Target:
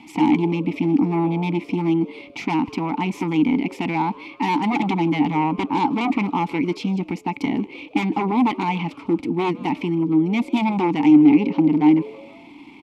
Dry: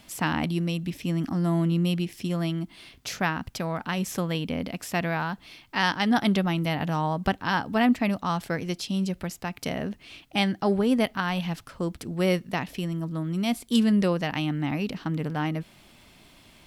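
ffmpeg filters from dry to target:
ffmpeg -i in.wav -filter_complex "[0:a]aeval=exprs='0.355*sin(PI/2*4.47*val(0)/0.355)':channel_layout=same,asplit=3[link_01][link_02][link_03];[link_01]bandpass=frequency=300:width_type=q:width=8,volume=0dB[link_04];[link_02]bandpass=frequency=870:width_type=q:width=8,volume=-6dB[link_05];[link_03]bandpass=frequency=2240:width_type=q:width=8,volume=-9dB[link_06];[link_04][link_05][link_06]amix=inputs=3:normalize=0,atempo=1.3,asplit=2[link_07][link_08];[link_08]asplit=3[link_09][link_10][link_11];[link_09]adelay=157,afreqshift=120,volume=-22.5dB[link_12];[link_10]adelay=314,afreqshift=240,volume=-30.5dB[link_13];[link_11]adelay=471,afreqshift=360,volume=-38.4dB[link_14];[link_12][link_13][link_14]amix=inputs=3:normalize=0[link_15];[link_07][link_15]amix=inputs=2:normalize=0,volume=6.5dB" out.wav

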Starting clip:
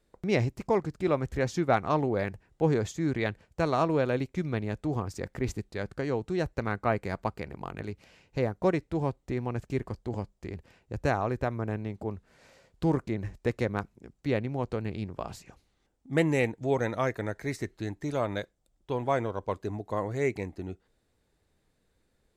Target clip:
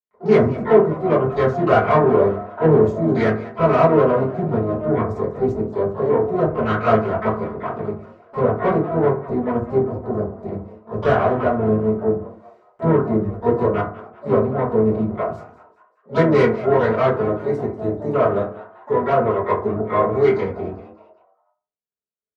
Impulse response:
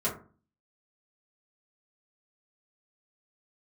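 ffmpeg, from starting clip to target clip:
-filter_complex "[0:a]agate=range=-33dB:threshold=-55dB:ratio=3:detection=peak,afwtdn=0.0178,lowshelf=frequency=67:gain=5.5,asplit=3[link_01][link_02][link_03];[link_02]asetrate=33038,aresample=44100,atempo=1.33484,volume=-10dB[link_04];[link_03]asetrate=88200,aresample=44100,atempo=0.5,volume=-12dB[link_05];[link_01][link_04][link_05]amix=inputs=3:normalize=0,asplit=2[link_06][link_07];[link_07]highpass=frequency=720:poles=1,volume=19dB,asoftclip=type=tanh:threshold=-9.5dB[link_08];[link_06][link_08]amix=inputs=2:normalize=0,lowpass=frequency=1800:poles=1,volume=-6dB,asplit=5[link_09][link_10][link_11][link_12][link_13];[link_10]adelay=195,afreqshift=130,volume=-17dB[link_14];[link_11]adelay=390,afreqshift=260,volume=-24.3dB[link_15];[link_12]adelay=585,afreqshift=390,volume=-31.7dB[link_16];[link_13]adelay=780,afreqshift=520,volume=-39dB[link_17];[link_09][link_14][link_15][link_16][link_17]amix=inputs=5:normalize=0[link_18];[1:a]atrim=start_sample=2205[link_19];[link_18][link_19]afir=irnorm=-1:irlink=0,volume=-4.5dB"

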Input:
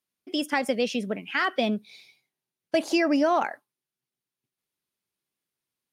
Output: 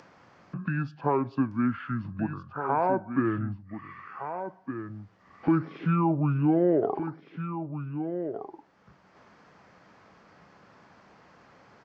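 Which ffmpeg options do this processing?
ffmpeg -i in.wav -filter_complex "[0:a]lowpass=10000,acrossover=split=270 3200:gain=0.178 1 0.126[link_01][link_02][link_03];[link_01][link_02][link_03]amix=inputs=3:normalize=0,acompressor=mode=upward:threshold=-27dB:ratio=2.5,aecho=1:1:757:0.335,asetrate=22050,aresample=44100" out.wav

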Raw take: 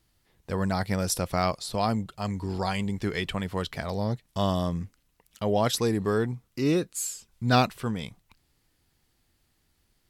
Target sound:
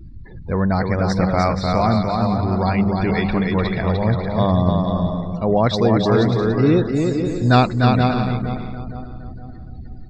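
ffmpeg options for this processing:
ffmpeg -i in.wav -filter_complex "[0:a]aeval=exprs='val(0)+0.5*0.015*sgn(val(0))':channel_layout=same,asuperstop=centerf=3100:order=4:qfactor=6,equalizer=frequency=2600:width_type=o:width=0.23:gain=-3.5,bandreject=frequency=50:width_type=h:width=6,bandreject=frequency=100:width_type=h:width=6,asplit=2[link_01][link_02];[link_02]aecho=0:1:464|928|1392|1856|2320:0.224|0.114|0.0582|0.0297|0.0151[link_03];[link_01][link_03]amix=inputs=2:normalize=0,afftdn=noise_reduction=34:noise_floor=-39,lowpass=frequency=4300:width=0.5412,lowpass=frequency=4300:width=1.3066,lowshelf=frequency=170:gain=5,asplit=2[link_04][link_05];[link_05]aecho=0:1:300|480|588|652.8|691.7:0.631|0.398|0.251|0.158|0.1[link_06];[link_04][link_06]amix=inputs=2:normalize=0,volume=6dB" out.wav

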